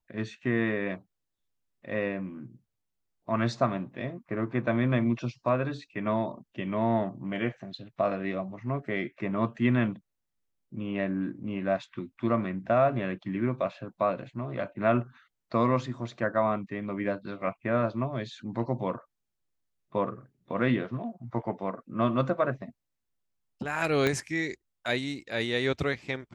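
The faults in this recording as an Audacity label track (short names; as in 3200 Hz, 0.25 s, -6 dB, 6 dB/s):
24.070000	24.070000	pop -13 dBFS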